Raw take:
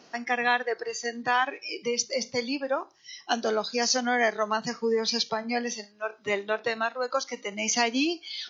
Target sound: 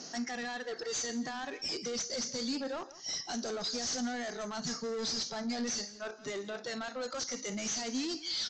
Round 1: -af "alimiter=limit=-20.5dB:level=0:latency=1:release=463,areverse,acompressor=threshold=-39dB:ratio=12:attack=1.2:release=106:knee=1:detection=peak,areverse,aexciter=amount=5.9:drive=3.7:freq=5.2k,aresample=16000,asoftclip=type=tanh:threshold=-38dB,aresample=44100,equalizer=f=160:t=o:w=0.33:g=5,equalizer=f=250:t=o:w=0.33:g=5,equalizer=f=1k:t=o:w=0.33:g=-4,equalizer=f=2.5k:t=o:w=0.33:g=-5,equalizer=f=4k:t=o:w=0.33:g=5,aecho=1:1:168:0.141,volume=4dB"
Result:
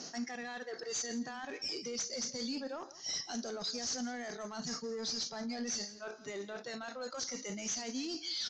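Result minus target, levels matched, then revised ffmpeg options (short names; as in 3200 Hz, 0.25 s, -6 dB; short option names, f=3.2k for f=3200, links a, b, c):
compressor: peak gain reduction +8 dB
-af "alimiter=limit=-20.5dB:level=0:latency=1:release=463,areverse,acompressor=threshold=-30dB:ratio=12:attack=1.2:release=106:knee=1:detection=peak,areverse,aexciter=amount=5.9:drive=3.7:freq=5.2k,aresample=16000,asoftclip=type=tanh:threshold=-38dB,aresample=44100,equalizer=f=160:t=o:w=0.33:g=5,equalizer=f=250:t=o:w=0.33:g=5,equalizer=f=1k:t=o:w=0.33:g=-4,equalizer=f=2.5k:t=o:w=0.33:g=-5,equalizer=f=4k:t=o:w=0.33:g=5,aecho=1:1:168:0.141,volume=4dB"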